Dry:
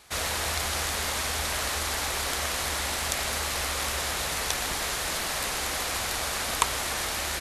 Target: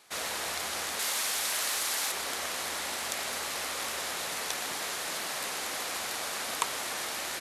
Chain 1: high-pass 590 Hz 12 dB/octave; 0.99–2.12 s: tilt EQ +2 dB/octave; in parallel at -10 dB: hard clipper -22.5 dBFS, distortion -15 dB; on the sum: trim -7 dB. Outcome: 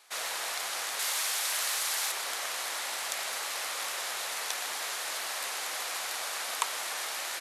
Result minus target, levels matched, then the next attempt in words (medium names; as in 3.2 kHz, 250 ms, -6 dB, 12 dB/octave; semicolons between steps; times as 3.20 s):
250 Hz band -11.5 dB
high-pass 200 Hz 12 dB/octave; 0.99–2.12 s: tilt EQ +2 dB/octave; in parallel at -10 dB: hard clipper -22.5 dBFS, distortion -15 dB; on the sum: trim -7 dB